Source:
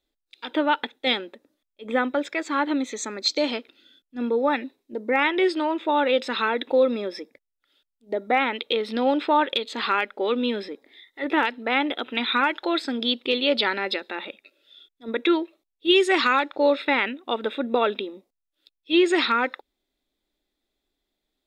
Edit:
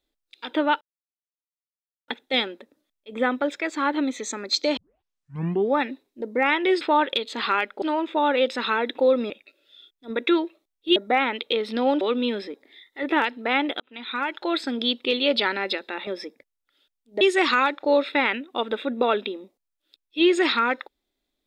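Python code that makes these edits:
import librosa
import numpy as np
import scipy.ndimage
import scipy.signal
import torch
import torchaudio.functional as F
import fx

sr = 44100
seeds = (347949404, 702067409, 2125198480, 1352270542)

y = fx.edit(x, sr, fx.insert_silence(at_s=0.81, length_s=1.27),
    fx.tape_start(start_s=3.5, length_s=0.98),
    fx.swap(start_s=7.02, length_s=1.14, other_s=14.28, other_length_s=1.66),
    fx.move(start_s=9.21, length_s=1.01, to_s=5.54),
    fx.fade_in_span(start_s=12.01, length_s=0.79), tone=tone)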